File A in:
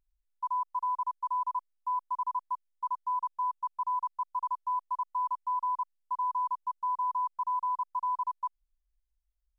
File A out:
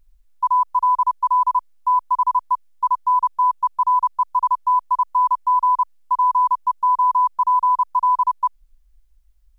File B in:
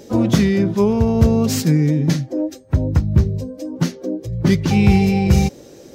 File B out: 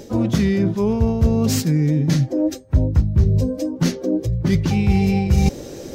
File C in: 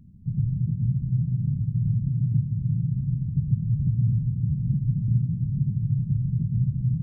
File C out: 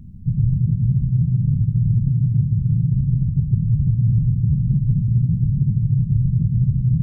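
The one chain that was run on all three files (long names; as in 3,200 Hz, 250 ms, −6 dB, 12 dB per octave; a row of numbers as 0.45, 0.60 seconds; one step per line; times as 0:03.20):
reversed playback
downward compressor 6 to 1, threshold −24 dBFS
reversed playback
low-shelf EQ 66 Hz +11.5 dB
loudness normalisation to −19 LKFS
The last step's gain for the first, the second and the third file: +14.0, +7.0, +7.5 decibels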